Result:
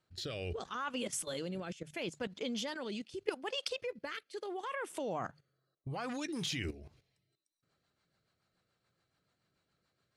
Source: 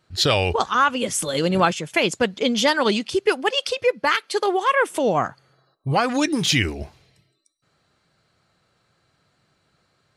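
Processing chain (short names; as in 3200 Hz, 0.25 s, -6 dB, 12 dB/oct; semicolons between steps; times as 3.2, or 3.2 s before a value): notches 50/100/150 Hz; level quantiser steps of 14 dB; rotary speaker horn 0.75 Hz, later 7 Hz, at 6.76; gain -8 dB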